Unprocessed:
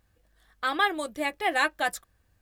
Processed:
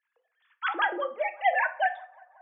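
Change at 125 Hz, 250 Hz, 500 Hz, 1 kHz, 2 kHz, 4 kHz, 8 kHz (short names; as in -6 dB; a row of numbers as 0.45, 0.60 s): n/a, -9.0 dB, +1.5 dB, +1.0 dB, -0.5 dB, -8.0 dB, under -40 dB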